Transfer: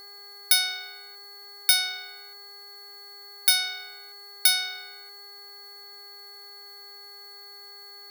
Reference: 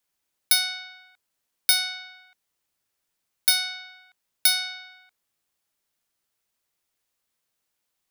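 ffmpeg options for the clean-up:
ffmpeg -i in.wav -af "adeclick=threshold=4,bandreject=frequency=405.3:width_type=h:width=4,bandreject=frequency=810.6:width_type=h:width=4,bandreject=frequency=1215.9:width_type=h:width=4,bandreject=frequency=1621.2:width_type=h:width=4,bandreject=frequency=2026.5:width_type=h:width=4,bandreject=frequency=4400:width=30,afftdn=noise_reduction=30:noise_floor=-46" out.wav

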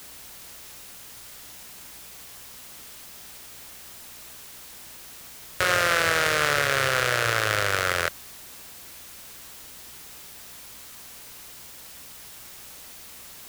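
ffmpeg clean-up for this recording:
ffmpeg -i in.wav -af "bandreject=frequency=61.4:width_type=h:width=4,bandreject=frequency=122.8:width_type=h:width=4,bandreject=frequency=184.2:width_type=h:width=4,bandreject=frequency=245.6:width_type=h:width=4,afwtdn=0.0063" out.wav

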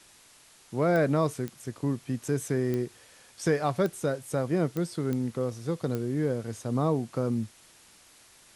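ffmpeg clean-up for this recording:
ffmpeg -i in.wav -af "adeclick=threshold=4,afwtdn=0.002" out.wav

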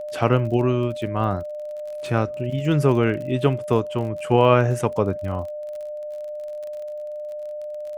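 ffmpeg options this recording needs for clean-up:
ffmpeg -i in.wav -af "adeclick=threshold=4,bandreject=frequency=600:width=30" out.wav

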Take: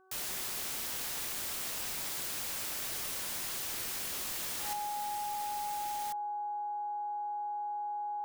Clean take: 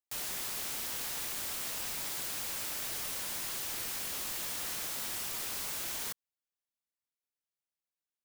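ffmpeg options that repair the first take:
ffmpeg -i in.wav -af "bandreject=frequency=377:width_type=h:width=4,bandreject=frequency=754:width_type=h:width=4,bandreject=frequency=1131:width_type=h:width=4,bandreject=frequency=1508:width_type=h:width=4,bandreject=frequency=830:width=30,asetnsamples=nb_out_samples=441:pad=0,asendcmd='4.73 volume volume 6.5dB',volume=0dB" out.wav

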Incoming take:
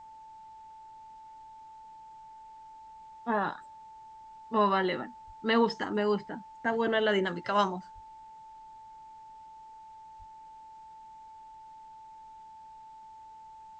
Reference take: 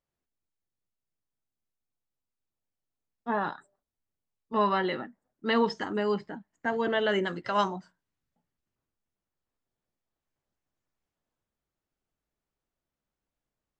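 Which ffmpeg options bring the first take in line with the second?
ffmpeg -i in.wav -filter_complex "[0:a]bandreject=frequency=880:width=30,asplit=3[link_01][link_02][link_03];[link_01]afade=type=out:start_time=5.26:duration=0.02[link_04];[link_02]highpass=frequency=140:width=0.5412,highpass=frequency=140:width=1.3066,afade=type=in:start_time=5.26:duration=0.02,afade=type=out:start_time=5.38:duration=0.02[link_05];[link_03]afade=type=in:start_time=5.38:duration=0.02[link_06];[link_04][link_05][link_06]amix=inputs=3:normalize=0,asplit=3[link_07][link_08][link_09];[link_07]afade=type=out:start_time=7.94:duration=0.02[link_10];[link_08]highpass=frequency=140:width=0.5412,highpass=frequency=140:width=1.3066,afade=type=in:start_time=7.94:duration=0.02,afade=type=out:start_time=8.06:duration=0.02[link_11];[link_09]afade=type=in:start_time=8.06:duration=0.02[link_12];[link_10][link_11][link_12]amix=inputs=3:normalize=0,asplit=3[link_13][link_14][link_15];[link_13]afade=type=out:start_time=10.18:duration=0.02[link_16];[link_14]highpass=frequency=140:width=0.5412,highpass=frequency=140:width=1.3066,afade=type=in:start_time=10.18:duration=0.02,afade=type=out:start_time=10.3:duration=0.02[link_17];[link_15]afade=type=in:start_time=10.3:duration=0.02[link_18];[link_16][link_17][link_18]amix=inputs=3:normalize=0,agate=range=-21dB:threshold=-42dB" out.wav

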